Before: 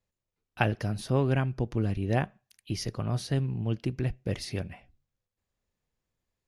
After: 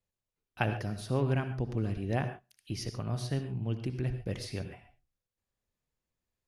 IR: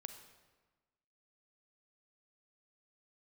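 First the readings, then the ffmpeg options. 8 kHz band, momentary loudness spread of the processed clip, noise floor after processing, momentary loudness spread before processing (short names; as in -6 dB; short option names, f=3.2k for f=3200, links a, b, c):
-4.0 dB, 8 LU, under -85 dBFS, 8 LU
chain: -filter_complex "[1:a]atrim=start_sample=2205,atrim=end_sample=3969,asetrate=26460,aresample=44100[a];[0:a][a]afir=irnorm=-1:irlink=0,volume=-2dB"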